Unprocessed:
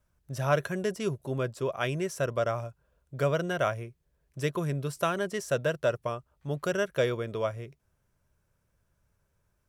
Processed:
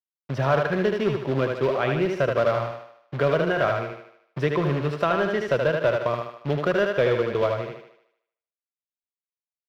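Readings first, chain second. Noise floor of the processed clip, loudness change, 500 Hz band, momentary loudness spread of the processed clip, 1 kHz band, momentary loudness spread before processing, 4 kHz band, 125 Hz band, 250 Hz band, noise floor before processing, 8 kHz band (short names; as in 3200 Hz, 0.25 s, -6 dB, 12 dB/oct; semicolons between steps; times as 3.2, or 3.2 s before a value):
under -85 dBFS, +6.5 dB, +7.5 dB, 10 LU, +7.0 dB, 11 LU, +4.5 dB, +5.0 dB, +7.0 dB, -75 dBFS, n/a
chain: expander -57 dBFS; low shelf 130 Hz -7.5 dB; in parallel at +1 dB: limiter -21 dBFS, peak gain reduction 9 dB; on the sum: companded quantiser 4-bit; air absorption 310 m; on a send: thinning echo 76 ms, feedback 45%, high-pass 250 Hz, level -3.5 dB; on the sum: three-band squash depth 40%; gain +1.5 dB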